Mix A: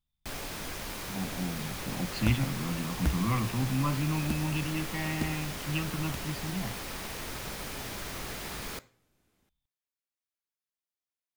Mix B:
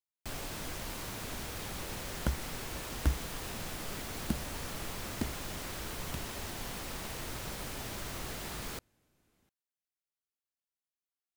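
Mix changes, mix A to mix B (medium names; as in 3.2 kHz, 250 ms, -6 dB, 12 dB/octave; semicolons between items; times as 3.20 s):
speech: muted; reverb: off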